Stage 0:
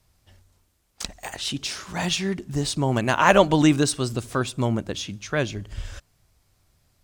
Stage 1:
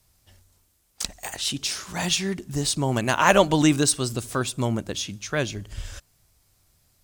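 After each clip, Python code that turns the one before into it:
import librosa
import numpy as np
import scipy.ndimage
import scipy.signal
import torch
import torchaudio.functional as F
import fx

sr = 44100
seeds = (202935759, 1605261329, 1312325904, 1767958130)

y = fx.high_shelf(x, sr, hz=5400.0, db=9.5)
y = F.gain(torch.from_numpy(y), -1.5).numpy()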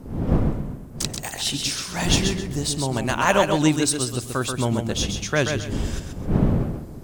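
y = fx.dmg_wind(x, sr, seeds[0], corner_hz=220.0, level_db=-31.0)
y = fx.rider(y, sr, range_db=5, speed_s=2.0)
y = fx.echo_feedback(y, sr, ms=132, feedback_pct=27, wet_db=-6.0)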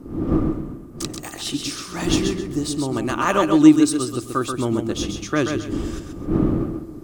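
y = fx.small_body(x, sr, hz=(320.0, 1200.0), ring_ms=45, db=15)
y = F.gain(torch.from_numpy(y), -4.0).numpy()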